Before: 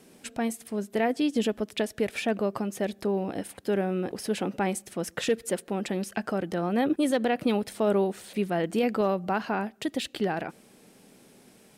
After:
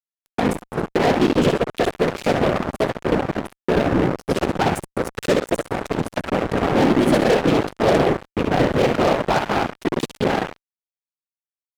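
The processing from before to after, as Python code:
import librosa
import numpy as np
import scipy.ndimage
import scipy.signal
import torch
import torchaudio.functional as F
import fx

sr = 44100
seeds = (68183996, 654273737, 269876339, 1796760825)

p1 = fx.wiener(x, sr, points=9)
p2 = fx.lowpass(p1, sr, hz=3900.0, slope=6)
p3 = fx.low_shelf(p2, sr, hz=130.0, db=-8.5)
p4 = p3 + fx.echo_feedback(p3, sr, ms=65, feedback_pct=48, wet_db=-4, dry=0)
p5 = fx.room_shoebox(p4, sr, seeds[0], volume_m3=3400.0, walls='furnished', distance_m=0.51)
p6 = fx.dynamic_eq(p5, sr, hz=2100.0, q=0.9, threshold_db=-41.0, ratio=4.0, max_db=-4)
p7 = fx.whisperise(p6, sr, seeds[1])
p8 = fx.fuzz(p7, sr, gain_db=25.0, gate_db=-31.0)
y = p8 * 10.0 ** (2.5 / 20.0)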